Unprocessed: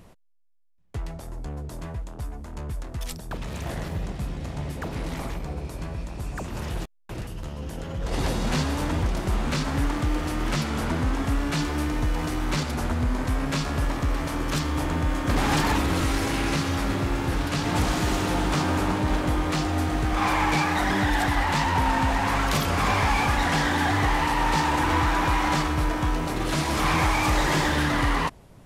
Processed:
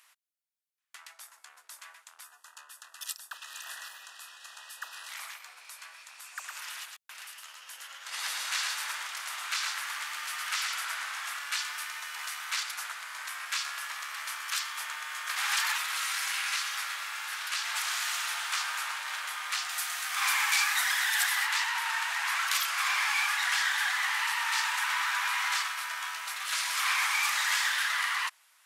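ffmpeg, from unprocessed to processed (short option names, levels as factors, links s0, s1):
-filter_complex "[0:a]asettb=1/sr,asplit=3[s0][s1][s2];[s0]atrim=end=2.244[s3];[s1]atrim=start=2.24:end=5.09,asetpts=PTS-STARTPTS,afade=t=in:d=0.004:c=qsin,afade=t=out:st=2.846:d=0.004:c=qsin,asuperstop=centerf=2200:order=20:qfactor=4.7[s4];[s2]atrim=start=5.086[s5];[s3][s4]acrossfade=d=0.004:c1=hsin:c2=qsin[s6];[s6][s5]acrossfade=d=0.004:c1=qsin:c2=hsin,asettb=1/sr,asplit=3[s7][s8][s9];[s7]atrim=end=6.314[s10];[s8]atrim=start=6.31:end=11.39,asetpts=PTS-STARTPTS,afade=t=in:d=0.004:c=qsin,afade=t=out:st=5.076:d=0.004:c=qsin,aecho=1:1:110:0.668,atrim=end_sample=224028[s11];[s9]atrim=start=11.386[s12];[s10][s11]acrossfade=d=0.004:c1=hsin:c2=qsin[s13];[s13][s12]acrossfade=d=0.004:c1=qsin:c2=hsin,asettb=1/sr,asplit=3[s14][s15][s16];[s14]atrim=end=19.694[s17];[s15]atrim=start=19.69:end=21.47,asetpts=PTS-STARTPTS,afade=t=in:d=0.004:c=qsin,afade=t=out:st=1.776:d=0.004:c=qsin,aemphasis=mode=production:type=cd[s18];[s16]atrim=start=21.466[s19];[s17][s18]acrossfade=d=0.004:c1=hsin:c2=qsin[s20];[s20][s19]acrossfade=d=0.004:c1=qsin:c2=hsin,highpass=f=1300:w=0.5412,highpass=f=1300:w=1.3066,equalizer=f=12000:w=0.66:g=3.5,acontrast=34,volume=0.531"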